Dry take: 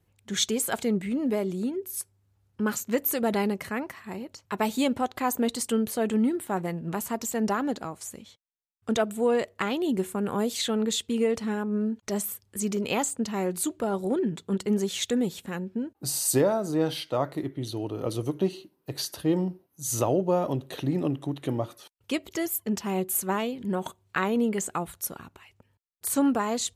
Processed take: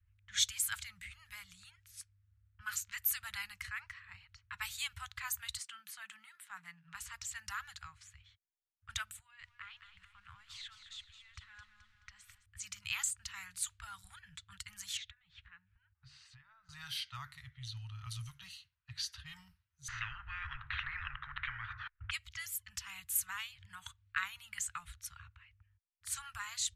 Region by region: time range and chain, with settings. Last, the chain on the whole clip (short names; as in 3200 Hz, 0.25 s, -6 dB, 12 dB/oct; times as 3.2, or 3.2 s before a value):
5.57–6.95 steep high-pass 150 Hz 72 dB/oct + high shelf 2400 Hz -8 dB
9.19–12.46 level quantiser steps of 19 dB + lo-fi delay 0.214 s, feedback 55%, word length 9-bit, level -9.5 dB
14.97–16.69 LPF 3900 Hz + compressor, threshold -39 dBFS
19.88–22.11 Chebyshev low-pass 1600 Hz, order 3 + spectral compressor 10:1
whole clip: low-pass opened by the level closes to 1800 Hz, open at -23.5 dBFS; inverse Chebyshev band-stop 240–530 Hz, stop band 70 dB; low shelf 210 Hz +8.5 dB; gain -4.5 dB